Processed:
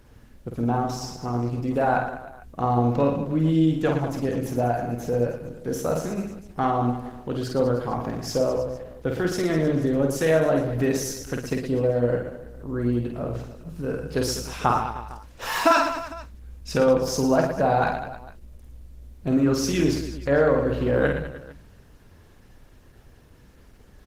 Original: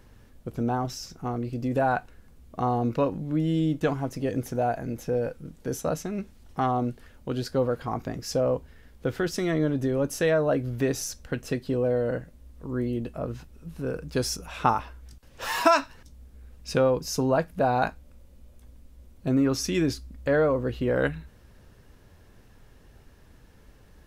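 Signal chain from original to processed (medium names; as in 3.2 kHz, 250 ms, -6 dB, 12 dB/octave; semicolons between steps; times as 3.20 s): reverse bouncing-ball echo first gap 50 ms, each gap 1.3×, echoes 5; trim +1.5 dB; Opus 16 kbps 48 kHz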